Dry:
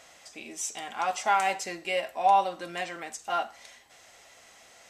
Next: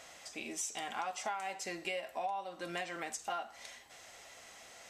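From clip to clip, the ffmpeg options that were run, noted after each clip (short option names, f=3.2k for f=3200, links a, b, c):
-af "acompressor=threshold=-35dB:ratio=12"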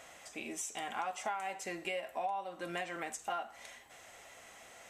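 -af "equalizer=f=4.8k:w=1.6:g=-8,volume=1dB"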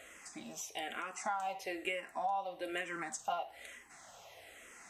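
-filter_complex "[0:a]asplit=2[a][b];[b]afreqshift=-1.1[c];[a][c]amix=inputs=2:normalize=1,volume=2.5dB"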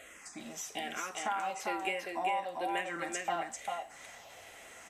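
-af "aecho=1:1:397:0.668,volume=2dB"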